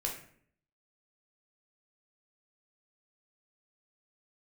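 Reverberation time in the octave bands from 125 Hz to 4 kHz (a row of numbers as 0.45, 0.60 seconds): 0.75, 0.75, 0.65, 0.50, 0.55, 0.40 seconds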